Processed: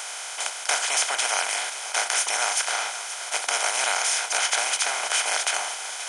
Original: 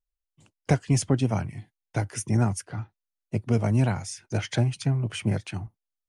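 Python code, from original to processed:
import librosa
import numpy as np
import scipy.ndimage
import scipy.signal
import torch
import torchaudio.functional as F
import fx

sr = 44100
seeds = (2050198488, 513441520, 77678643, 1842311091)

p1 = fx.bin_compress(x, sr, power=0.2)
p2 = scipy.signal.sosfilt(scipy.signal.butter(4, 860.0, 'highpass', fs=sr, output='sos'), p1)
p3 = p2 + fx.echo_single(p2, sr, ms=529, db=-13.5, dry=0)
y = p3 * 10.0 ** (3.5 / 20.0)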